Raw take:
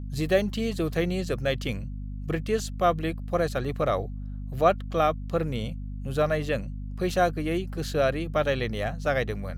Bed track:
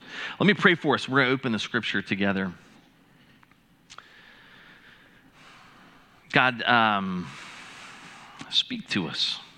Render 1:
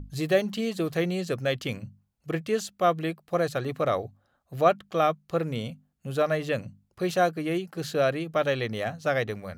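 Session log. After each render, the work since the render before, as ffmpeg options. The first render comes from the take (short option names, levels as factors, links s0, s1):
-af "bandreject=f=50:t=h:w=6,bandreject=f=100:t=h:w=6,bandreject=f=150:t=h:w=6,bandreject=f=200:t=h:w=6,bandreject=f=250:t=h:w=6"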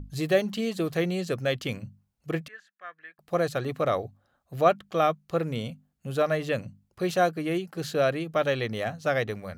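-filter_complex "[0:a]asettb=1/sr,asplit=3[s0][s1][s2];[s0]atrim=end=2.484[s3];[s1]atrim=start=2.48:end=3.19,asetpts=PTS-STARTPTS,afade=t=in:d=0.004:c=qsin,afade=t=out:st=0.706:d=0.004:c=qsin,bandpass=f=1700:t=q:w=8.9[s4];[s2]atrim=start=3.186[s5];[s3][s4]acrossfade=d=0.004:c1=hsin:c2=qsin[s6];[s6][s5]acrossfade=d=0.004:c1=qsin:c2=hsin"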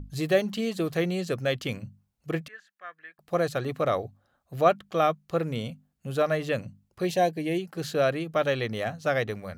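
-filter_complex "[0:a]asettb=1/sr,asplit=3[s0][s1][s2];[s0]atrim=end=7.054[s3];[s1]atrim=start=7.05:end=7.59,asetpts=PTS-STARTPTS,afade=t=in:d=0.004:c=qsin,afade=t=out:st=0.536:d=0.004:c=qsin,asuperstop=centerf=1300:order=4:qfactor=1.9[s4];[s2]atrim=start=7.586[s5];[s3][s4]acrossfade=d=0.004:c1=hsin:c2=qsin[s6];[s6][s5]acrossfade=d=0.004:c1=qsin:c2=hsin"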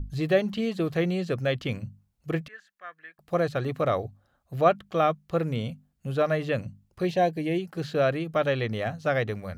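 -filter_complex "[0:a]lowshelf=f=99:g=9,acrossover=split=4400[s0][s1];[s1]acompressor=threshold=0.00178:ratio=4:attack=1:release=60[s2];[s0][s2]amix=inputs=2:normalize=0"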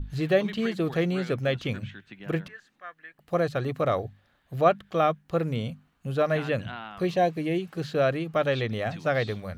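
-filter_complex "[1:a]volume=0.112[s0];[0:a][s0]amix=inputs=2:normalize=0"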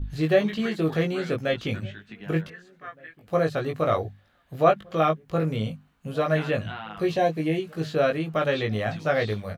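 -filter_complex "[0:a]asplit=2[s0][s1];[s1]adelay=19,volume=0.708[s2];[s0][s2]amix=inputs=2:normalize=0,asplit=2[s3][s4];[s4]adelay=1516,volume=0.0501,highshelf=f=4000:g=-34.1[s5];[s3][s5]amix=inputs=2:normalize=0"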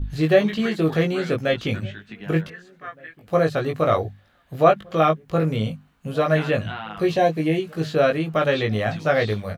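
-af "volume=1.58,alimiter=limit=0.794:level=0:latency=1"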